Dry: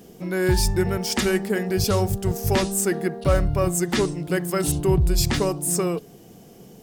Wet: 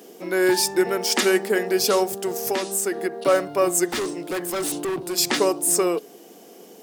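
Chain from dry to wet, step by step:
high-pass filter 280 Hz 24 dB per octave
0:02.03–0:03.23: downward compressor 6 to 1, threshold −25 dBFS, peak gain reduction 8 dB
0:03.87–0:05.18: gain into a clipping stage and back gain 27.5 dB
level +4 dB

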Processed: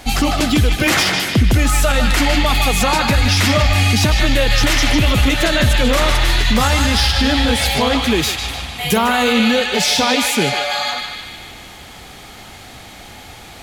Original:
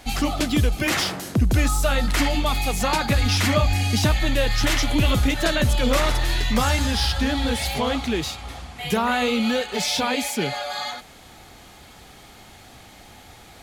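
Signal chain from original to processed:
0:08.02–0:09.33: high-shelf EQ 9,800 Hz +10 dB
feedback echo with a band-pass in the loop 151 ms, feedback 67%, band-pass 2,600 Hz, level −3.5 dB
boost into a limiter +12 dB
level −4 dB

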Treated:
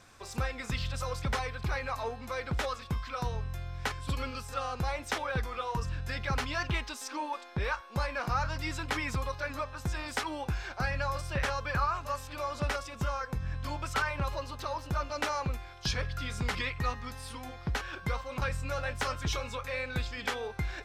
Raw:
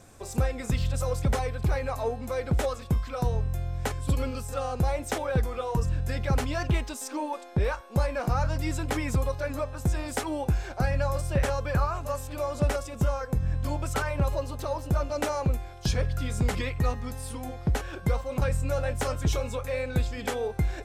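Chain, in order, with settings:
flat-topped bell 2,300 Hz +10 dB 2.9 octaves
level −8 dB

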